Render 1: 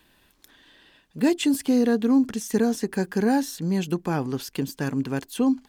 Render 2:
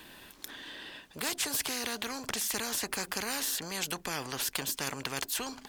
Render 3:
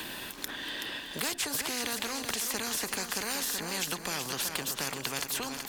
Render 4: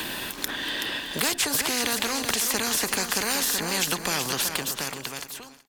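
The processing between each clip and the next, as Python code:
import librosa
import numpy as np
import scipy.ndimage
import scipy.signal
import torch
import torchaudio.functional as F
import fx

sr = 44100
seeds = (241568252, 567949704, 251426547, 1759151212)

y1 = fx.low_shelf(x, sr, hz=110.0, db=-10.0)
y1 = fx.spectral_comp(y1, sr, ratio=4.0)
y2 = fx.echo_feedback(y1, sr, ms=377, feedback_pct=50, wet_db=-8.5)
y2 = fx.band_squash(y2, sr, depth_pct=70)
y3 = fx.fade_out_tail(y2, sr, length_s=1.41)
y3 = F.gain(torch.from_numpy(y3), 7.5).numpy()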